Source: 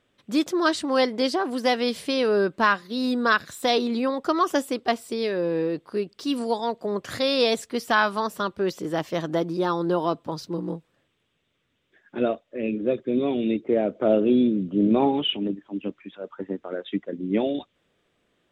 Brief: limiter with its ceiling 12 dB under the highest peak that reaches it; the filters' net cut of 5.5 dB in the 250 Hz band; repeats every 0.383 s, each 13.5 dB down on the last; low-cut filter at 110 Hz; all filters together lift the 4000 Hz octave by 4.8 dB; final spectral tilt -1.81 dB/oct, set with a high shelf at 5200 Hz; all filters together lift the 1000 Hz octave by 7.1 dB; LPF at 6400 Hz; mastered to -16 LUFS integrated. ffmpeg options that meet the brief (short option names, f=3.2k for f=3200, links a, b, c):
-af "highpass=110,lowpass=6.4k,equalizer=f=250:t=o:g=-7.5,equalizer=f=1k:t=o:g=9,equalizer=f=4k:t=o:g=7.5,highshelf=f=5.2k:g=-3.5,alimiter=limit=-13.5dB:level=0:latency=1,aecho=1:1:383|766:0.211|0.0444,volume=10dB"